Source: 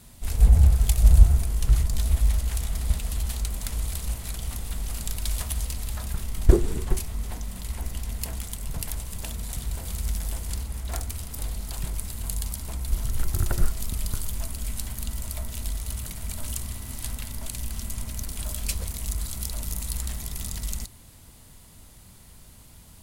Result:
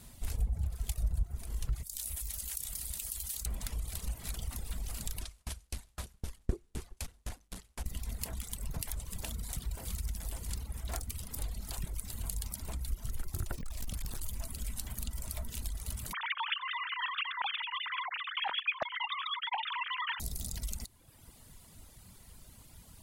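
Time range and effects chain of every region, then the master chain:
1.83–3.46 s: pre-emphasis filter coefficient 0.9 + level flattener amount 70%
5.21–7.86 s: one-bit delta coder 64 kbps, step -30 dBFS + sawtooth tremolo in dB decaying 3.9 Hz, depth 33 dB
13.57–14.22 s: hard clipper -26 dBFS + loudspeaker Doppler distortion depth 0.87 ms
16.13–20.20 s: formants replaced by sine waves + bass shelf 400 Hz +10 dB + loudspeaker Doppler distortion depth 0.36 ms
whole clip: compression 3:1, threshold -29 dBFS; reverb removal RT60 1.1 s; trim -2.5 dB

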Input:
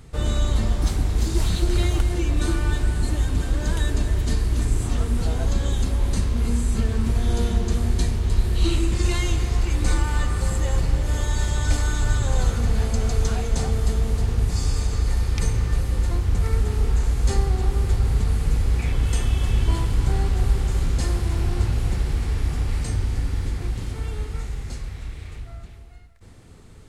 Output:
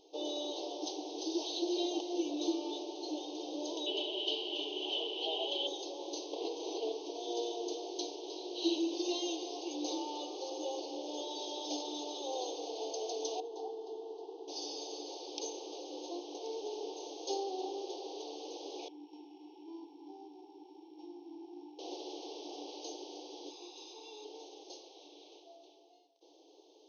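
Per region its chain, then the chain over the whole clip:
3.86–5.67 s: resonant low-pass 3 kHz, resonance Q 11 + comb 5 ms, depth 48%
6.33–6.92 s: band-pass 120–4600 Hz + level flattener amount 100%
13.40–14.48 s: tape spacing loss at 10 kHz 31 dB + static phaser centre 390 Hz, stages 8
18.88–21.79 s: sorted samples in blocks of 8 samples + vowel filter u
23.50–24.25 s: high-pass 490 Hz + comb 0.8 ms, depth 70%
whole clip: FFT band-pass 280–6500 Hz; elliptic band-stop 840–3100 Hz, stop band 70 dB; trim -4 dB

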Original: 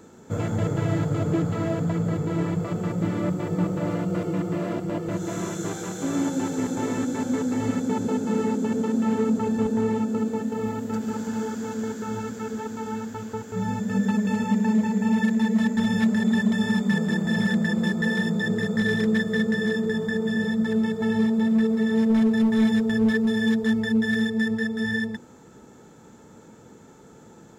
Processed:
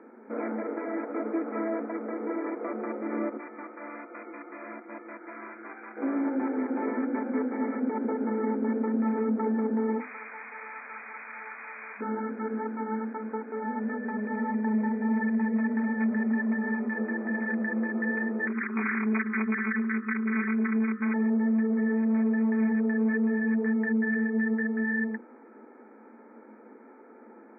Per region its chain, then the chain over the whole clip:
3.37–5.97 s: high-pass 350 Hz 6 dB/octave + peaking EQ 460 Hz -14 dB 1.8 oct
10.00–12.01 s: one-bit delta coder 16 kbps, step -27.5 dBFS + high-pass 1.4 kHz
18.47–21.14 s: brick-wall FIR band-stop 270–1200 Hz + peaking EQ 1.3 kHz +8 dB 0.41 oct + loudspeaker Doppler distortion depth 0.48 ms
whole clip: peak limiter -19.5 dBFS; hum notches 50/100/150/200/250/300/350/400/450 Hz; FFT band-pass 210–2500 Hz

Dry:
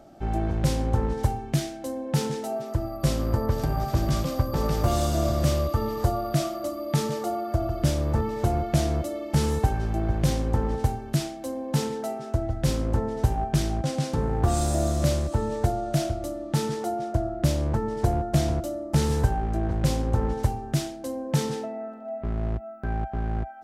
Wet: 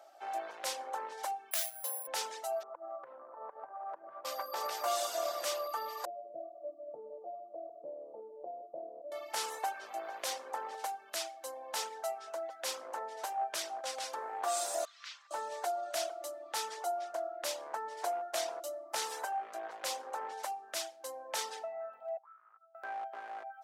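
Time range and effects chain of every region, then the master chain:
1.51–2.07 s: band-pass 740–5200 Hz + careless resampling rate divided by 4×, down none, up zero stuff
2.63–4.25 s: low-pass 1.3 kHz 24 dB/octave + compression 12:1, threshold -28 dBFS
6.05–9.12 s: steep low-pass 590 Hz + hum notches 50/100/150/200/250/300/350/400 Hz
14.85–15.31 s: Bessel high-pass 1.9 kHz, order 6 + distance through air 200 m
22.17–22.75 s: low-pass 3.1 kHz + auto-wah 650–1300 Hz, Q 15, up, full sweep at -25.5 dBFS
whole clip: high-pass 640 Hz 24 dB/octave; reverb removal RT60 0.6 s; trim -2 dB

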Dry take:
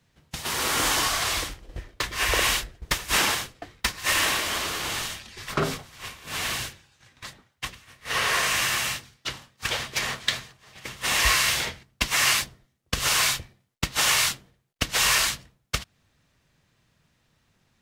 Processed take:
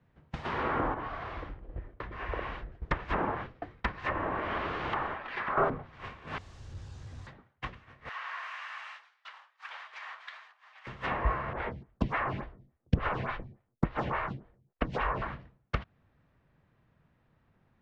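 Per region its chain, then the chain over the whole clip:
0.94–2.72 s: compression 1.5:1, threshold -38 dBFS + tape spacing loss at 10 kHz 22 dB
4.93–5.70 s: high-pass 940 Hz + waveshaping leveller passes 5
6.38–7.27 s: one-bit comparator + FFT filter 100 Hz 0 dB, 140 Hz -10 dB, 1.5 kHz -19 dB, 2.3 kHz -20 dB, 7.1 kHz +5 dB
8.09–10.87 s: high-pass 880 Hz 24 dB/octave + compression 2:1, threshold -39 dBFS + tape noise reduction on one side only encoder only
11.53–15.22 s: bass shelf 340 Hz +9.5 dB + lamp-driven phase shifter 3.5 Hz
whole clip: low-pass that closes with the level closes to 990 Hz, closed at -19.5 dBFS; low-pass 1.5 kHz 12 dB/octave

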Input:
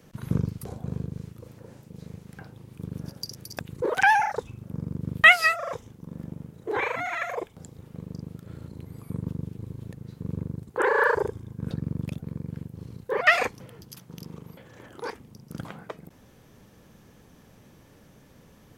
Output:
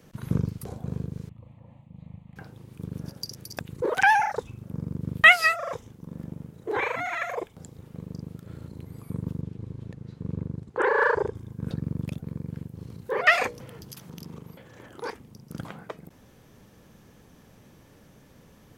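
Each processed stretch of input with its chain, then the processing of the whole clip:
1.29–2.36 s: tape spacing loss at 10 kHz 25 dB + static phaser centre 1.5 kHz, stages 6
9.41–11.35 s: hard clipper -12 dBFS + distance through air 66 m
12.90–14.38 s: hum notches 60/120/180/240/300/360/420/480/540/600 Hz + upward compressor, threshold -36 dBFS
whole clip: none

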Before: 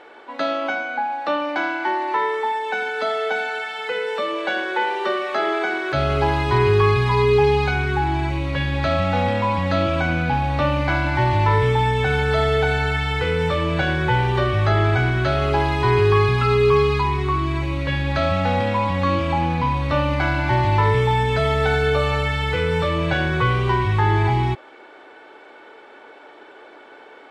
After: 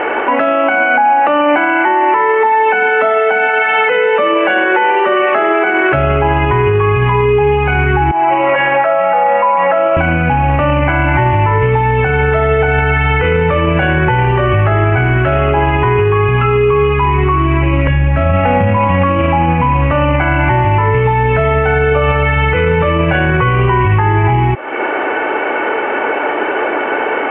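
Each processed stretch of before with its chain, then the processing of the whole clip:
8.11–9.97 s: ladder band-pass 1 kHz, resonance 20% + comb 5.8 ms, depth 51% + level flattener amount 70%
17.87–18.77 s: bass shelf 180 Hz +10.5 dB + de-hum 93.08 Hz, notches 3
whole clip: Chebyshev low-pass 2.9 kHz, order 6; compression 5:1, threshold -34 dBFS; loudness maximiser +32 dB; trim -3 dB

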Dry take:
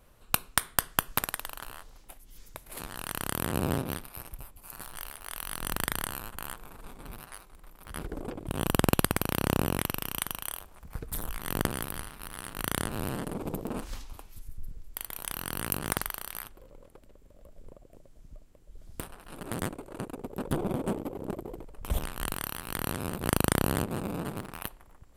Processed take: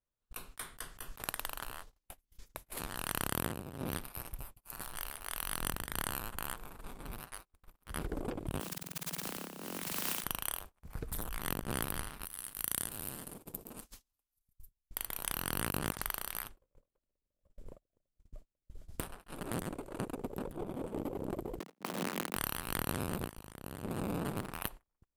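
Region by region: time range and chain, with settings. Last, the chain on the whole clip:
8.60–10.24 s: steep high-pass 160 Hz 96 dB/octave + word length cut 6-bit, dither triangular
12.25–14.91 s: pre-emphasis filter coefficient 0.8 + feedback delay 140 ms, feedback 43%, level -14 dB
21.59–22.36 s: square wave that keeps the level + steep high-pass 170 Hz 48 dB/octave
whole clip: gate -46 dBFS, range -33 dB; compressor with a negative ratio -34 dBFS, ratio -0.5; trim -3.5 dB

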